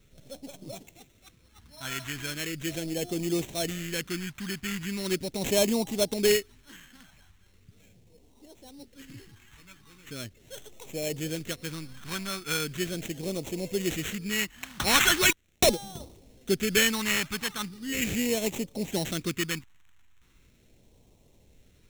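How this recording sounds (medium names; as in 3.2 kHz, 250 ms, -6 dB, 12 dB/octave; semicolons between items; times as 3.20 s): aliases and images of a low sample rate 4.8 kHz, jitter 0%; phasing stages 2, 0.39 Hz, lowest notch 490–1400 Hz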